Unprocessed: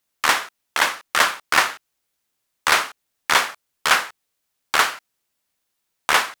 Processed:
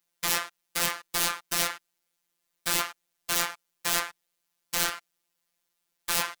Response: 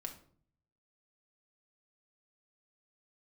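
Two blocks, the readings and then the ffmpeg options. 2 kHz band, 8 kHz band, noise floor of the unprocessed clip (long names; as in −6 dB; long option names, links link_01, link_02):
−13.0 dB, −2.5 dB, −76 dBFS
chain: -af "acontrast=65,aeval=exprs='(mod(3.35*val(0)+1,2)-1)/3.35':channel_layout=same,afftfilt=real='hypot(re,im)*cos(PI*b)':imag='0':win_size=1024:overlap=0.75,volume=-6.5dB"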